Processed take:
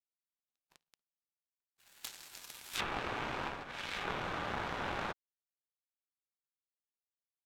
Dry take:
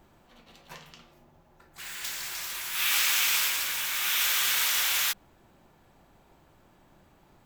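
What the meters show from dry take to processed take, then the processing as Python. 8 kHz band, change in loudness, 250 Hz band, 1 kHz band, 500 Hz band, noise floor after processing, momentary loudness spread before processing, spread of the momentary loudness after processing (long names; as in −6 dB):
−23.5 dB, −14.5 dB, can't be measured, −1.5 dB, +6.5 dB, below −85 dBFS, 13 LU, 11 LU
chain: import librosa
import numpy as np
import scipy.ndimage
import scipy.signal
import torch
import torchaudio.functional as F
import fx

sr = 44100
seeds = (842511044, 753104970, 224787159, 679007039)

p1 = fx.graphic_eq_31(x, sr, hz=(800, 2000, 4000, 16000), db=(6, -3, 3, 6))
p2 = fx.power_curve(p1, sr, exponent=3.0)
p3 = fx.over_compress(p2, sr, threshold_db=-43.0, ratio=-0.5)
p4 = p2 + (p3 * librosa.db_to_amplitude(1.0))
p5 = fx.env_lowpass_down(p4, sr, base_hz=1100.0, full_db=-36.5)
y = p5 * librosa.db_to_amplitude(11.0)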